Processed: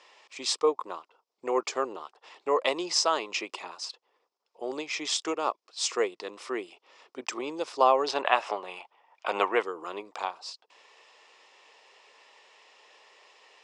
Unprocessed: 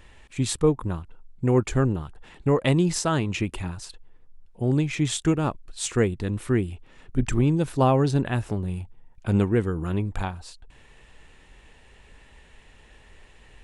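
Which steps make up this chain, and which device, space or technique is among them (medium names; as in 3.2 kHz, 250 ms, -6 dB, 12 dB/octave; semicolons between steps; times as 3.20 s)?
phone speaker on a table (cabinet simulation 450–7100 Hz, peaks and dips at 1.1 kHz +6 dB, 1.6 kHz -8 dB, 5.1 kHz +10 dB); 8.08–9.63 s: high-order bell 1.4 kHz +10 dB 2.8 oct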